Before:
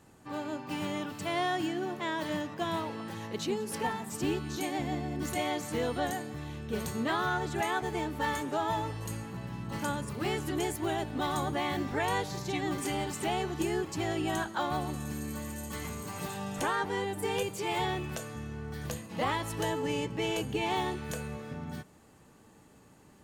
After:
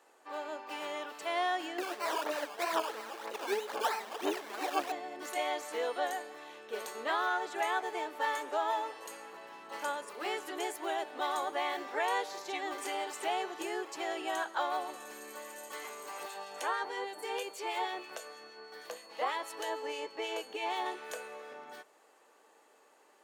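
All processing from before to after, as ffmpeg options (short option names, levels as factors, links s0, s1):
-filter_complex "[0:a]asettb=1/sr,asplit=3[s0][s1][s2];[s0]atrim=end=1.784[s3];[s1]atrim=start=1.78:end=4.92,asetpts=PTS-STARTPTS,afade=t=in:d=0.004:c=qsin,afade=t=out:st=3.136:d=0.004:c=qsin,acrusher=samples=18:mix=1:aa=0.000001:lfo=1:lforange=10.8:lforate=3.1,aphaser=in_gain=1:out_gain=1:delay=5:decay=0.58:speed=2:type=sinusoidal[s4];[s2]atrim=start=4.916[s5];[s3][s4]acrossfade=d=0.004:c1=hsin:c2=qsin[s6];[s6][s5]acrossfade=d=0.004:c1=qsin:c2=hsin,asettb=1/sr,asplit=3[s7][s8][s9];[s7]atrim=end=16.234[s10];[s8]atrim=start=16.23:end=20.86,asetpts=PTS-STARTPTS,afade=t=in:d=0.004:c=qsin,afade=t=out:st=4.626:d=0.004:c=qsin,acrossover=split=1900[s11][s12];[s11]aeval=exprs='val(0)*(1-0.5/2+0.5/2*cos(2*PI*6.3*n/s))':c=same[s13];[s12]aeval=exprs='val(0)*(1-0.5/2-0.5/2*cos(2*PI*6.3*n/s))':c=same[s14];[s13][s14]amix=inputs=2:normalize=0,aeval=exprs='val(0)+0.00224*sin(2*PI*4400*n/s)':c=same[s15];[s9]atrim=start=20.856[s16];[s10][s15]acrossfade=d=0.004:c1=hsin:c2=qsin[s17];[s17][s16]acrossfade=d=0.004:c1=qsin:c2=hsin,highpass=f=440:w=0.5412,highpass=f=440:w=1.3066,highshelf=f=4400:g=-6"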